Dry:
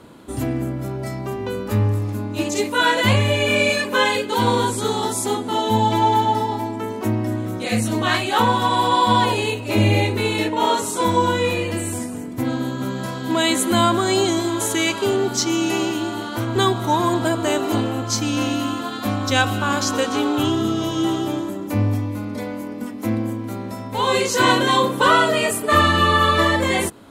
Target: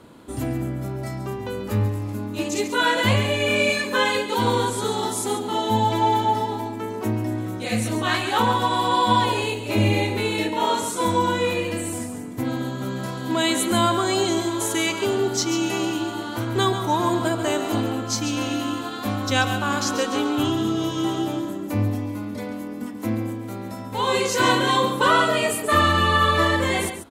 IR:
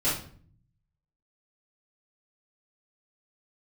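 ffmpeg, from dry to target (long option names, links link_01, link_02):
-af "aecho=1:1:139:0.316,volume=-3dB"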